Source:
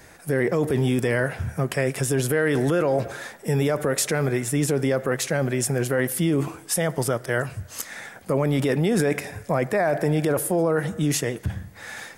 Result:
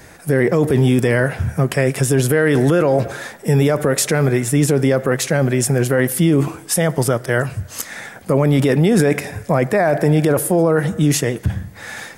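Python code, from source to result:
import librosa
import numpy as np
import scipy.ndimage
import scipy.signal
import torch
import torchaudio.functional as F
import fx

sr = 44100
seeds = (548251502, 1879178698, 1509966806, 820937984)

y = fx.peak_eq(x, sr, hz=140.0, db=3.0, octaves=2.6)
y = F.gain(torch.from_numpy(y), 5.5).numpy()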